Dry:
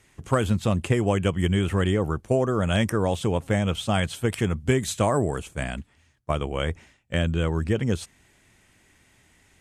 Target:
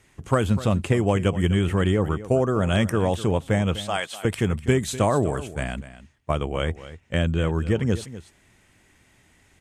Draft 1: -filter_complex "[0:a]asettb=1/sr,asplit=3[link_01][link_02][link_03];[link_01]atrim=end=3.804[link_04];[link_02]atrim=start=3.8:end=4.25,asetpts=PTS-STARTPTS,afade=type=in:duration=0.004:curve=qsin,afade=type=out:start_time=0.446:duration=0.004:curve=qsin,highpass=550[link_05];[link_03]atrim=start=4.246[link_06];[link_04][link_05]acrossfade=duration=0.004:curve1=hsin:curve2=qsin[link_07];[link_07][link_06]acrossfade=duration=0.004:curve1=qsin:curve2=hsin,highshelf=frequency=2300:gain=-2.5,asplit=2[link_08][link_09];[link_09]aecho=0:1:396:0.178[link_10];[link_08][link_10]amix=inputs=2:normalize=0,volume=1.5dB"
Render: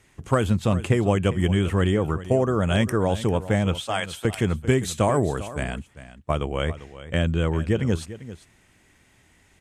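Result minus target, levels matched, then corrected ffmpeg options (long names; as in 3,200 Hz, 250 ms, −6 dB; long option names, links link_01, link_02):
echo 148 ms late
-filter_complex "[0:a]asettb=1/sr,asplit=3[link_01][link_02][link_03];[link_01]atrim=end=3.804[link_04];[link_02]atrim=start=3.8:end=4.25,asetpts=PTS-STARTPTS,afade=type=in:duration=0.004:curve=qsin,afade=type=out:start_time=0.446:duration=0.004:curve=qsin,highpass=550[link_05];[link_03]atrim=start=4.246[link_06];[link_04][link_05]acrossfade=duration=0.004:curve1=hsin:curve2=qsin[link_07];[link_07][link_06]acrossfade=duration=0.004:curve1=qsin:curve2=hsin,highshelf=frequency=2300:gain=-2.5,asplit=2[link_08][link_09];[link_09]aecho=0:1:248:0.178[link_10];[link_08][link_10]amix=inputs=2:normalize=0,volume=1.5dB"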